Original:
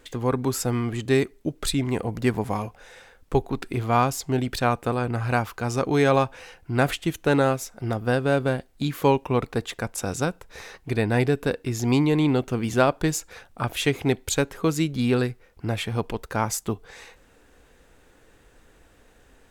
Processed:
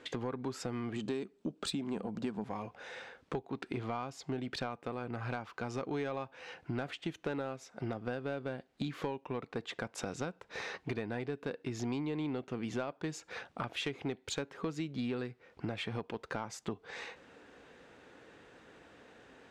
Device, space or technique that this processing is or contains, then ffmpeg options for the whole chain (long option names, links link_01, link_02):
AM radio: -filter_complex "[0:a]asettb=1/sr,asplit=3[link_01][link_02][link_03];[link_01]atrim=end=0.964[link_04];[link_02]atrim=start=0.96:end=2.44,asetpts=PTS-STARTPTS,afade=type=in:duration=0.004:curve=qsin,afade=type=out:start_time=1.476:duration=0.004:curve=qsin,equalizer=frequency=125:width_type=o:width=0.33:gain=-7,equalizer=frequency=200:width_type=o:width=0.33:gain=10,equalizer=frequency=2000:width_type=o:width=0.33:gain=-9,equalizer=frequency=8000:width_type=o:width=0.33:gain=6[link_05];[link_03]atrim=start=2.436[link_06];[link_04][link_05]acrossfade=duration=0.004:curve1=hsin:curve2=qsin[link_07];[link_07][link_06]acrossfade=duration=0.004:curve1=qsin:curve2=hsin,highpass=150,lowpass=4400,acompressor=threshold=-35dB:ratio=8,asoftclip=type=tanh:threshold=-26dB,volume=1.5dB"